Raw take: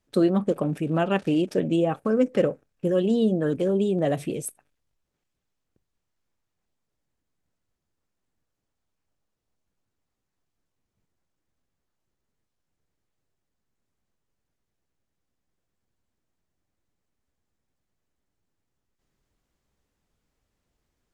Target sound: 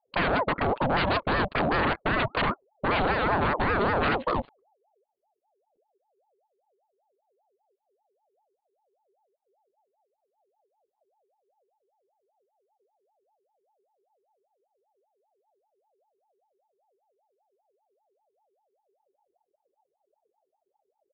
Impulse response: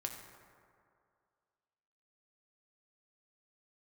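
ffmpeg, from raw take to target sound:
-af "anlmdn=0.631,aresample=8000,aeval=exprs='0.0631*(abs(mod(val(0)/0.0631+3,4)-2)-1)':c=same,aresample=44100,aeval=exprs='val(0)*sin(2*PI*630*n/s+630*0.4/5.1*sin(2*PI*5.1*n/s))':c=same,volume=7.5dB"

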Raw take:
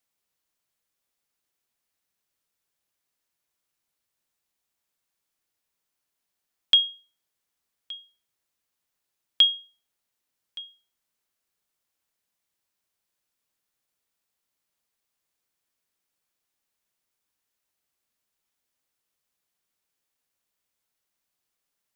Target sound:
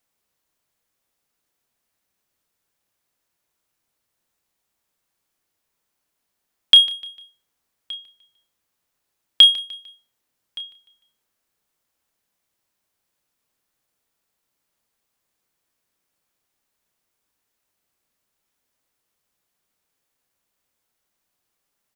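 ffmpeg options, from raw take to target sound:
-filter_complex "[0:a]asplit=2[a][b];[b]adynamicsmooth=sensitivity=4.5:basefreq=2.4k,volume=-6dB[c];[a][c]amix=inputs=2:normalize=0,asplit=2[d][e];[e]adelay=30,volume=-11dB[f];[d][f]amix=inputs=2:normalize=0,aecho=1:1:150|300|450:0.141|0.0523|0.0193,volume=4dB"

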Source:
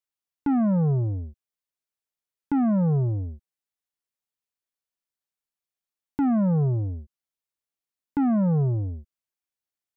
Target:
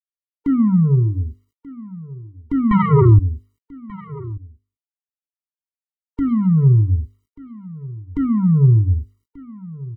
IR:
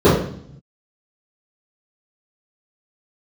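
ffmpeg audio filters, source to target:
-filter_complex "[0:a]bandreject=f=50:t=h:w=6,bandreject=f=100:t=h:w=6,bandreject=f=150:t=h:w=6,bandreject=f=200:t=h:w=6,bandreject=f=250:t=h:w=6,bandreject=f=300:t=h:w=6,bandreject=f=350:t=h:w=6,bandreject=f=400:t=h:w=6,bandreject=f=450:t=h:w=6,asettb=1/sr,asplit=3[a][b][c];[a]atrim=end=6.284[d];[b]atrim=start=6.28:end=6.96,asetpts=PTS-STARTPTS,afade=t=in:d=0.004:c=qsin,afade=t=out:st=0.676:d=0.004:c=qsin,adynamicsmooth=sensitivity=1.5:basefreq=850[e];[c]atrim=start=6.956[f];[d][e]acrossfade=d=0.004:c1=hsin:c2=qsin[g];[g][f]acrossfade=d=0.004:c1=qsin:c2=hsin,adynamicequalizer=threshold=0.02:dfrequency=150:dqfactor=0.93:tfrequency=150:tqfactor=0.93:attack=5:release=100:ratio=0.375:range=2.5:mode=boostabove:tftype=bell,acontrast=34,asettb=1/sr,asplit=3[h][i][j];[h]atrim=end=2.714[k];[i]atrim=start=2.71:end=3.19,asetpts=PTS-STARTPTS,afade=t=in:d=0.004:c=qsin,afade=t=out:st=0.476:d=0.004:c=qsin,aeval=exprs='0.447*sin(PI/2*3.16*val(0)/0.447)':c=same[l];[j]atrim=start=3.186[m];[k][l]acrossfade=d=0.004:c1=hsin:c2=qsin[n];[n][m]acrossfade=d=0.004:c1=qsin:c2=hsin,asubboost=boost=6:cutoff=80,acrusher=bits=11:mix=0:aa=0.000001,asplit=2[o][p];[p]aecho=0:1:1186:0.112[q];[o][q]amix=inputs=2:normalize=0,afftfilt=real='re*eq(mod(floor(b*sr/1024/460),2),0)':imag='im*eq(mod(floor(b*sr/1024/460),2),0)':win_size=1024:overlap=0.75"

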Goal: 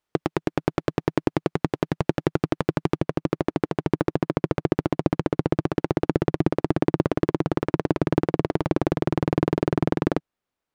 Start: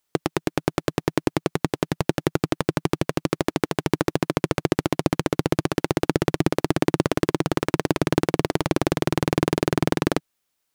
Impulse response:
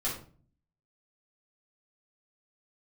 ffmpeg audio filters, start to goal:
-af "asetnsamples=n=441:p=0,asendcmd='2.97 lowpass f 1100',lowpass=f=1.9k:p=1"

